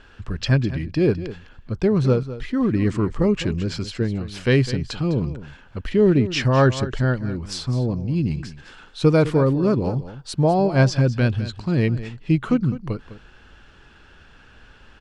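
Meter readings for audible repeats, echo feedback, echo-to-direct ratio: 1, no regular repeats, -14.0 dB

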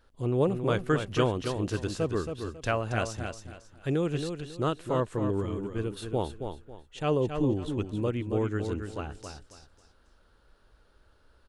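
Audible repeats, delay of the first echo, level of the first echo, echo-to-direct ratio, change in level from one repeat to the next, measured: 3, 273 ms, -7.0 dB, -6.5 dB, -11.5 dB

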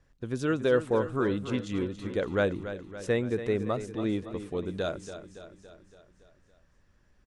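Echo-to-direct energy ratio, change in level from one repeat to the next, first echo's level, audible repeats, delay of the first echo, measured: -10.0 dB, -5.0 dB, -11.5 dB, 5, 282 ms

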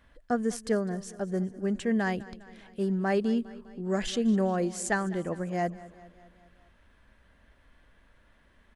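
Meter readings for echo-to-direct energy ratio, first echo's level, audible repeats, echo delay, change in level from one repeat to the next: -17.0 dB, -19.0 dB, 4, 203 ms, -4.5 dB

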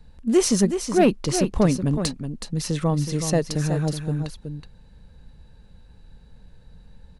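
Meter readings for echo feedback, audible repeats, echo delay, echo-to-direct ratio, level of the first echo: no regular repeats, 1, 372 ms, -8.5 dB, -8.5 dB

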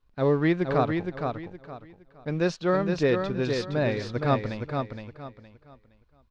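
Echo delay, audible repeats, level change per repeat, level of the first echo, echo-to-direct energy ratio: 466 ms, 3, -11.5 dB, -5.5 dB, -5.0 dB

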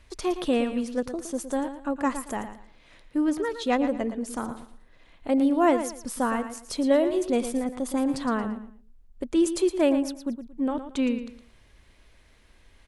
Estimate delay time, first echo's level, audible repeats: 114 ms, -10.5 dB, 3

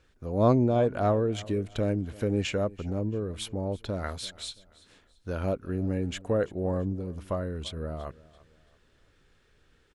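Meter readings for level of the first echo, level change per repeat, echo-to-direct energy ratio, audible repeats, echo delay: -21.0 dB, -9.0 dB, -20.5 dB, 2, 337 ms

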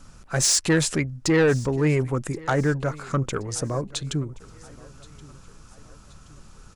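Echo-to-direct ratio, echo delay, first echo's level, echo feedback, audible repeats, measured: -21.0 dB, 1075 ms, -22.0 dB, 47%, 2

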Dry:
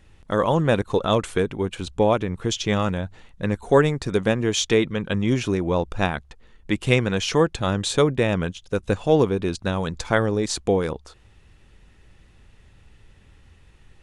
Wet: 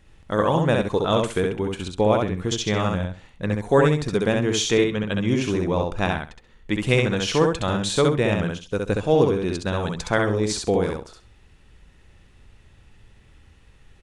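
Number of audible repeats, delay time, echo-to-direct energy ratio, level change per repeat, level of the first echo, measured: 3, 66 ms, -3.0 dB, -14.0 dB, -3.0 dB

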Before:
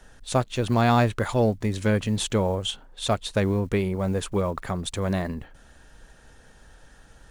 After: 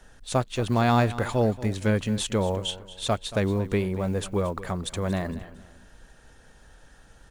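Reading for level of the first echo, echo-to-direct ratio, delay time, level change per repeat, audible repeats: -16.0 dB, -15.5 dB, 229 ms, -9.5 dB, 3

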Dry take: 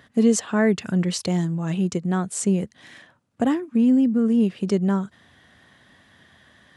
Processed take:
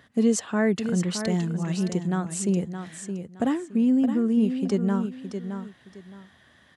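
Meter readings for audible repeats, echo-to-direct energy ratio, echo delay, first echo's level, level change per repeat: 2, -8.0 dB, 618 ms, -8.5 dB, -12.0 dB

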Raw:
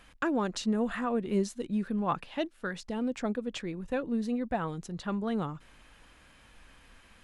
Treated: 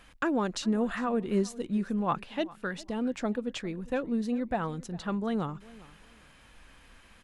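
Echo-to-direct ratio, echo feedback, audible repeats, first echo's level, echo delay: -21.0 dB, 24%, 2, -21.0 dB, 403 ms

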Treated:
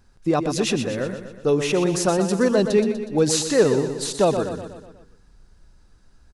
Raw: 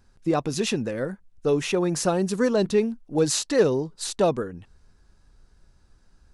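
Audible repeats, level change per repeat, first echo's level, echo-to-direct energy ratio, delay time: 5, -5.5 dB, -8.5 dB, -7.0 dB, 122 ms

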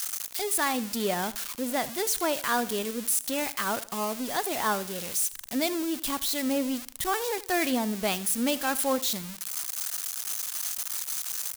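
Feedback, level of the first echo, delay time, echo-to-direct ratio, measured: 34%, -18.5 dB, 79 ms, -18.0 dB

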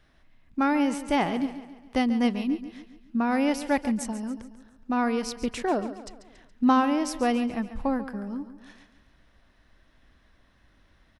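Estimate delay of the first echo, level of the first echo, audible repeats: 140 ms, -13.0 dB, 4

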